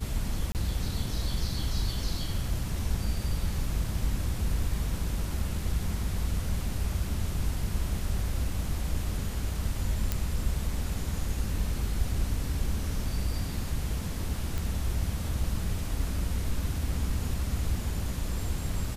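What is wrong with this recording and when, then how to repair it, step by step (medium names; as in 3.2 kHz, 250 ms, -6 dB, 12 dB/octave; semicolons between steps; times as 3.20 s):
0.52–0.55 s: dropout 28 ms
10.12 s: pop -13 dBFS
14.58 s: pop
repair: de-click; interpolate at 0.52 s, 28 ms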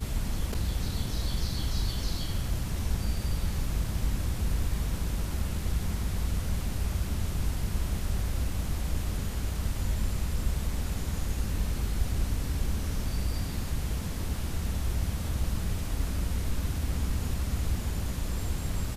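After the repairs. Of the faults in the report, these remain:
nothing left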